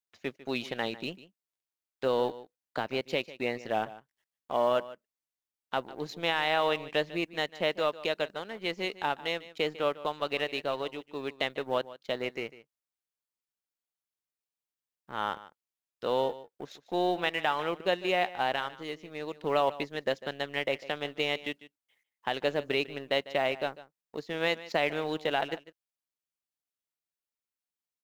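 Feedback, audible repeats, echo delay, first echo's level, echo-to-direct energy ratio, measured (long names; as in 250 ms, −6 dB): repeats not evenly spaced, 1, 149 ms, −17.0 dB, −17.0 dB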